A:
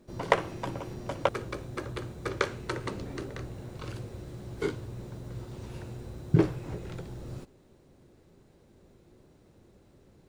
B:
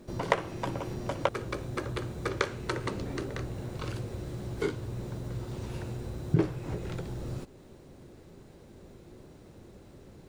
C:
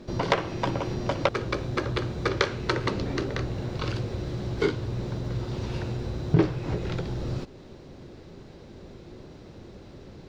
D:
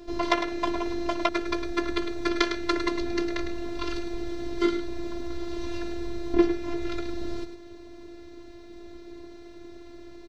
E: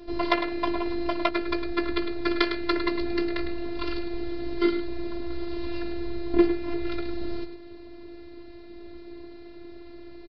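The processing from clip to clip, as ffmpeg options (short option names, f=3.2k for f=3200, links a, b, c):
-af "acompressor=threshold=-47dB:ratio=1.5,volume=7.5dB"
-af "asoftclip=type=hard:threshold=-18.5dB,highshelf=f=7.1k:t=q:w=1.5:g=-13.5,volume=6dB"
-af "afftfilt=real='hypot(re,im)*cos(PI*b)':imag='0':win_size=512:overlap=0.75,aecho=1:1:105:0.355,volume=3.5dB"
-filter_complex "[0:a]asplit=2[a][b];[b]adelay=17,volume=-12dB[c];[a][c]amix=inputs=2:normalize=0,aresample=11025,aresample=44100"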